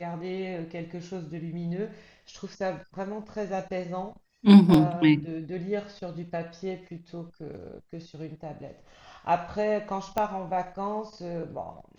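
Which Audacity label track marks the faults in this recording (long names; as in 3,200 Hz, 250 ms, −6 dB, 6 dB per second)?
4.740000	4.740000	drop-out 3.7 ms
7.540000	7.540000	drop-out 2 ms
10.180000	10.180000	click −13 dBFS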